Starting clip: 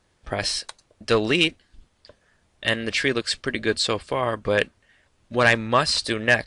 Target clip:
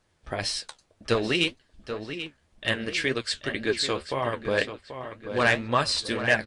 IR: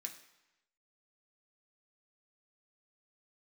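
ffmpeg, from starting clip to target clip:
-filter_complex "[0:a]asplit=2[a][b];[b]adelay=785,lowpass=f=3.8k:p=1,volume=-9.5dB,asplit=2[c][d];[d]adelay=785,lowpass=f=3.8k:p=1,volume=0.44,asplit=2[e][f];[f]adelay=785,lowpass=f=3.8k:p=1,volume=0.44,asplit=2[g][h];[h]adelay=785,lowpass=f=3.8k:p=1,volume=0.44,asplit=2[i][j];[j]adelay=785,lowpass=f=3.8k:p=1,volume=0.44[k];[a][c][e][g][i][k]amix=inputs=6:normalize=0,flanger=delay=6.1:depth=9.9:regen=52:speed=1.9:shape=triangular"

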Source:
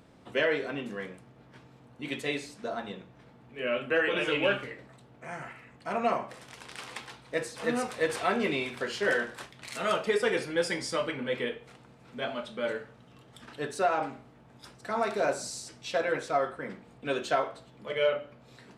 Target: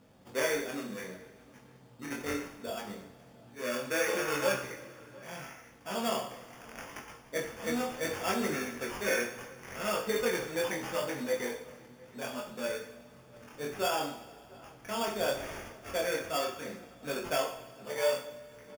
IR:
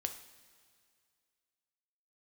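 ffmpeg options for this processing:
-filter_complex "[0:a]acrusher=samples=11:mix=1:aa=0.000001,flanger=delay=19.5:depth=5.6:speed=0.7,asplit=2[a][b];[b]adelay=699.7,volume=-22dB,highshelf=f=4k:g=-15.7[c];[a][c]amix=inputs=2:normalize=0[d];[1:a]atrim=start_sample=2205[e];[d][e]afir=irnorm=-1:irlink=0"

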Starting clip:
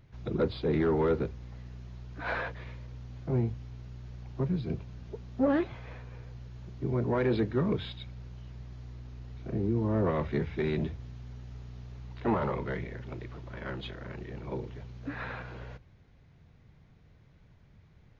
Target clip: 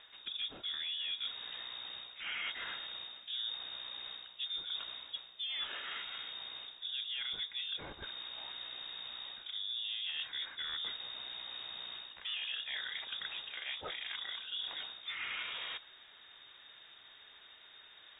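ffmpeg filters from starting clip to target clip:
-af "aemphasis=mode=production:type=riaa,bandreject=f=1.5k:w=14,acontrast=89,alimiter=limit=-19dB:level=0:latency=1:release=308,areverse,acompressor=threshold=-42dB:ratio=6,areverse,lowpass=f=3.2k:t=q:w=0.5098,lowpass=f=3.2k:t=q:w=0.6013,lowpass=f=3.2k:t=q:w=0.9,lowpass=f=3.2k:t=q:w=2.563,afreqshift=-3800,volume=3.5dB"

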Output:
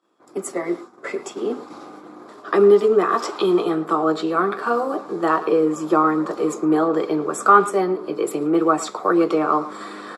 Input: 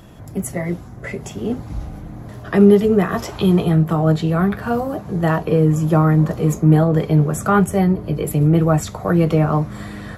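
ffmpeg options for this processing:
-filter_complex "[0:a]asplit=2[a][b];[b]adelay=110,highpass=300,lowpass=3.4k,asoftclip=type=hard:threshold=-11dB,volume=-15dB[c];[a][c]amix=inputs=2:normalize=0,agate=range=-33dB:threshold=-27dB:ratio=3:detection=peak,highshelf=f=5.1k:g=5.5,asplit=2[d][e];[e]acompressor=threshold=-30dB:ratio=6,volume=0.5dB[f];[d][f]amix=inputs=2:normalize=0,highpass=f=310:w=0.5412,highpass=f=310:w=1.3066,equalizer=f=350:t=q:w=4:g=5,equalizer=f=640:t=q:w=4:g=-5,equalizer=f=1.2k:t=q:w=4:g=9,equalizer=f=1.9k:t=q:w=4:g=-6,equalizer=f=2.9k:t=q:w=4:g=-6,equalizer=f=6.3k:t=q:w=4:g=-9,lowpass=f=8k:w=0.5412,lowpass=f=8k:w=1.3066,volume=-1dB"

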